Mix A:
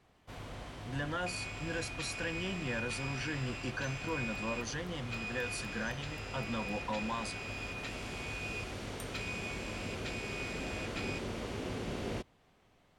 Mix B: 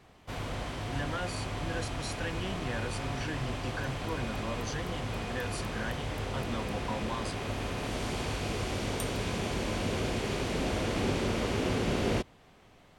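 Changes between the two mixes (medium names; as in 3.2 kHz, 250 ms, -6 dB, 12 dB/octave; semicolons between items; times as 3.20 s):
first sound +9.0 dB; second sound -9.0 dB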